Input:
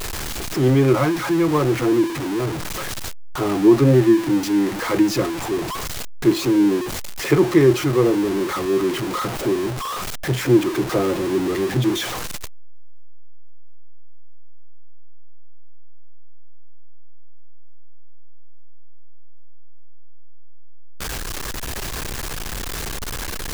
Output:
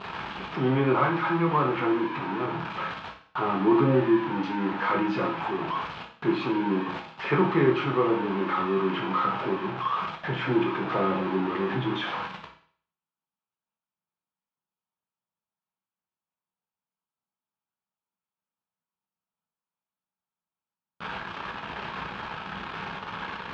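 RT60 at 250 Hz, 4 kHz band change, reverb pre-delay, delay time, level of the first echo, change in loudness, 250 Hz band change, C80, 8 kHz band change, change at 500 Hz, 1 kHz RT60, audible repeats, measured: 0.50 s, -8.5 dB, 12 ms, no echo, no echo, -7.0 dB, -8.5 dB, 11.5 dB, under -30 dB, -7.5 dB, 0.55 s, no echo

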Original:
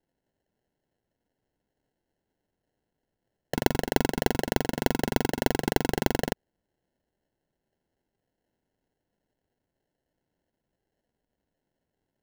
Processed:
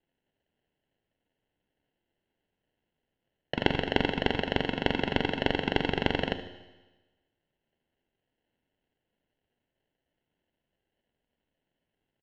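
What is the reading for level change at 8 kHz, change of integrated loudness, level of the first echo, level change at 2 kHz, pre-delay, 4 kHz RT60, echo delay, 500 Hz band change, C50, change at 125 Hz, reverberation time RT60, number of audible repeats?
under -20 dB, -1.5 dB, -15.5 dB, +2.0 dB, 11 ms, 1.2 s, 75 ms, -2.0 dB, 9.5 dB, -2.5 dB, 1.2 s, 1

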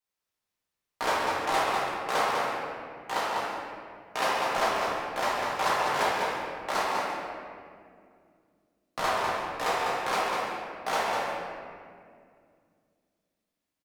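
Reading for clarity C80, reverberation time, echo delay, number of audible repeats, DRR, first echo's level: -1.5 dB, 2.2 s, 199 ms, 1, -7.5 dB, -5.0 dB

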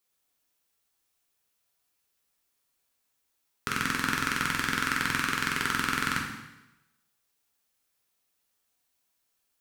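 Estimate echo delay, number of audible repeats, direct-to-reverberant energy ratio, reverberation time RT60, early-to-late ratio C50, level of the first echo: no echo, no echo, -1.5 dB, 1.0 s, 4.0 dB, no echo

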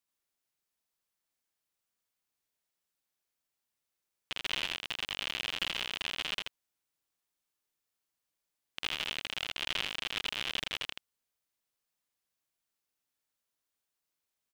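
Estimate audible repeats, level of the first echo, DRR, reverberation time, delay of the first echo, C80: 1, -3.5 dB, no reverb, no reverb, 82 ms, no reverb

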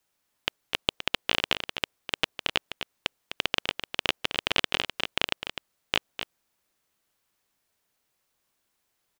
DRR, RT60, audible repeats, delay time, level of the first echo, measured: no reverb, no reverb, 1, 254 ms, -9.0 dB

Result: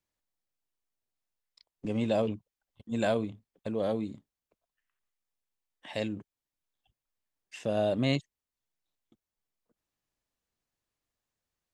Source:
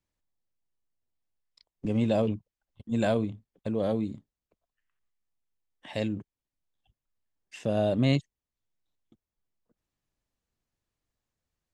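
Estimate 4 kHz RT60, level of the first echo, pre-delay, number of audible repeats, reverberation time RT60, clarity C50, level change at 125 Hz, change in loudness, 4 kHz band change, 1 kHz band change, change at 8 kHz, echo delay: no reverb, no echo, no reverb, no echo, no reverb, no reverb, -6.0 dB, -2.5 dB, 0.0 dB, -1.0 dB, no reading, no echo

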